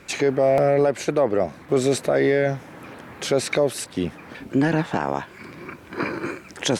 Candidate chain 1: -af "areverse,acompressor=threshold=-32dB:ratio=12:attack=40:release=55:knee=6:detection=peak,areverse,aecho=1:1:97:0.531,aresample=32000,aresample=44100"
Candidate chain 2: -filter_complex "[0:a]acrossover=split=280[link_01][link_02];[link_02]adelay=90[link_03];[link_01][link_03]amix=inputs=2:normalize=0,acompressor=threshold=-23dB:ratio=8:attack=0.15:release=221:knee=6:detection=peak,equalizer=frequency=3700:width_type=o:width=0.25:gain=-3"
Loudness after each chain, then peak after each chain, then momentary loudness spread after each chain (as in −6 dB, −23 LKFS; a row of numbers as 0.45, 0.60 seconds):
−31.0, −32.0 LKFS; −13.0, −20.5 dBFS; 8, 10 LU